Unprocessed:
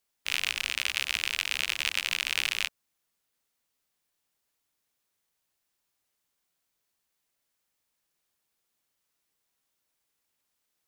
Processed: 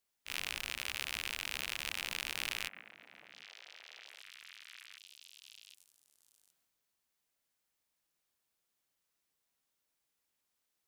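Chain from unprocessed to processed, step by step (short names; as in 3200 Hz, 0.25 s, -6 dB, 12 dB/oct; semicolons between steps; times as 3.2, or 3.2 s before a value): delay with a stepping band-pass 0.766 s, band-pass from 220 Hz, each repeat 1.4 oct, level -8 dB; dynamic EQ 5700 Hz, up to -5 dB, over -45 dBFS, Q 0.72; transient shaper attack -11 dB, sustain +4 dB; gain -4 dB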